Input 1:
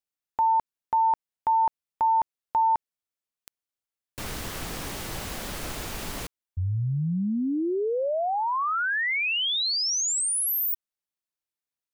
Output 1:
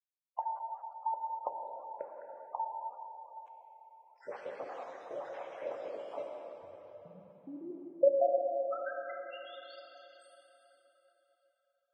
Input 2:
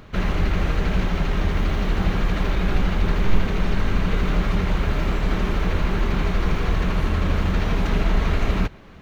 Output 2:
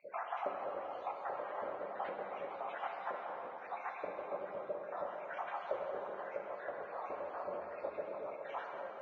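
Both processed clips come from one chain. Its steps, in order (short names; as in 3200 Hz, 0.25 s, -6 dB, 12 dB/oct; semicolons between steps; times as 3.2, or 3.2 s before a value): random spectral dropouts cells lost 75%; compressor 8:1, threshold -33 dBFS; ladder band-pass 600 Hz, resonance 75%; plate-style reverb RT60 4.1 s, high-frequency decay 0.75×, DRR -0.5 dB; gain +10 dB; Vorbis 16 kbps 22050 Hz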